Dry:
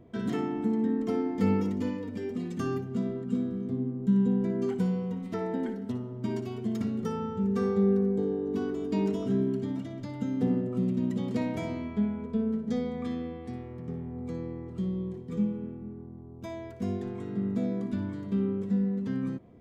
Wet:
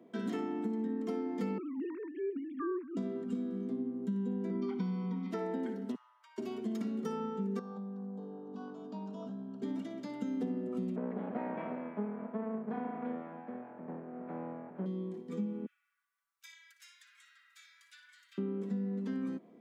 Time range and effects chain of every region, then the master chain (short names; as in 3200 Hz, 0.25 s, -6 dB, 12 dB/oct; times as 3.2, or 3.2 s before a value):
1.58–2.97 sine-wave speech + BPF 310–2300 Hz
4.5–5.31 steep low-pass 5600 Hz 48 dB/oct + comb 0.9 ms, depth 90%
5.95–6.38 steep high-pass 940 Hz 48 dB/oct + high shelf 2800 Hz -7.5 dB + compressor 10:1, threshold -55 dBFS
7.59–9.62 compressor 10:1, threshold -28 dBFS + air absorption 150 m + fixed phaser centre 870 Hz, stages 4
10.96–14.86 minimum comb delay 1.2 ms + LPF 2000 Hz 24 dB/oct
15.66–18.38 steep high-pass 1400 Hz 48 dB/oct + high shelf 3300 Hz +8.5 dB + flange 1.2 Hz, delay 2.5 ms, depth 5.5 ms, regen +31%
whole clip: steep high-pass 190 Hz 36 dB/oct; compressor, threshold -30 dBFS; gain -2 dB